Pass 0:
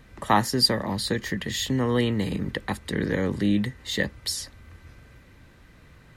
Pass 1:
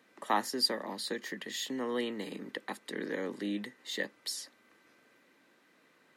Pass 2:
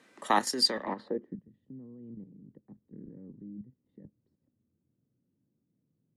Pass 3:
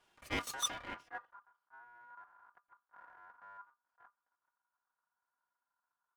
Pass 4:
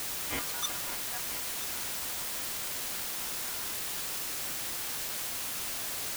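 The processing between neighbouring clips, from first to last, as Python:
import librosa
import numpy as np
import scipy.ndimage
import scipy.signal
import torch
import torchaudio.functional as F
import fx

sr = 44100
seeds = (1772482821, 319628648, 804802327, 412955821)

y1 = scipy.signal.sosfilt(scipy.signal.butter(4, 250.0, 'highpass', fs=sr, output='sos'), x)
y1 = y1 * librosa.db_to_amplitude(-8.5)
y2 = fx.level_steps(y1, sr, step_db=10)
y2 = fx.filter_sweep_lowpass(y2, sr, from_hz=9100.0, to_hz=120.0, start_s=0.62, end_s=1.42, q=1.5)
y2 = fx.low_shelf(y2, sr, hz=75.0, db=8.5)
y2 = y2 * librosa.db_to_amplitude(7.0)
y3 = fx.lower_of_two(y2, sr, delay_ms=4.4)
y3 = y3 * np.sin(2.0 * np.pi * 1200.0 * np.arange(len(y3)) / sr)
y3 = fx.attack_slew(y3, sr, db_per_s=490.0)
y3 = y3 * librosa.db_to_amplitude(-6.5)
y4 = fx.quant_dither(y3, sr, seeds[0], bits=6, dither='triangular')
y4 = y4 + 10.0 ** (-12.5 / 20.0) * np.pad(y4, (int(982 * sr / 1000.0), 0))[:len(y4)]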